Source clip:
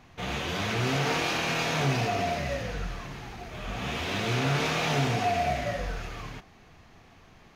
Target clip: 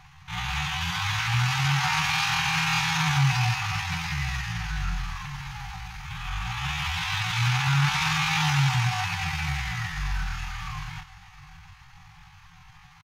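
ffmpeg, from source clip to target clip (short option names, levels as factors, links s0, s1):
-af "aecho=1:1:406|812|1218|1624:0.112|0.0505|0.0227|0.0102,atempo=0.58,afftfilt=real='re*(1-between(b*sr/4096,180,740))':imag='im*(1-between(b*sr/4096,180,740))':win_size=4096:overlap=0.75,volume=1.78"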